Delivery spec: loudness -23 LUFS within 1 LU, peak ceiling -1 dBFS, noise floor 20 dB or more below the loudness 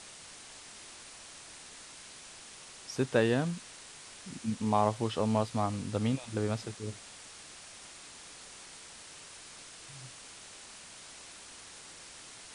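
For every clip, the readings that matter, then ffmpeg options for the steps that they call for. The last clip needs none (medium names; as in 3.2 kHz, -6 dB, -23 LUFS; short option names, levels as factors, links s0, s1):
noise floor -50 dBFS; noise floor target -53 dBFS; loudness -32.5 LUFS; peak level -13.5 dBFS; loudness target -23.0 LUFS
-> -af "afftdn=nr=6:nf=-50"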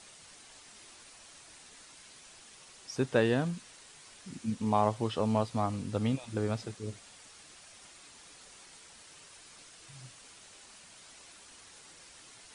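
noise floor -55 dBFS; loudness -32.0 LUFS; peak level -13.5 dBFS; loudness target -23.0 LUFS
-> -af "volume=2.82"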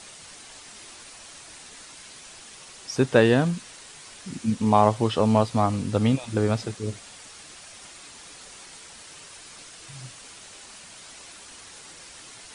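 loudness -23.0 LUFS; peak level -4.5 dBFS; noise floor -46 dBFS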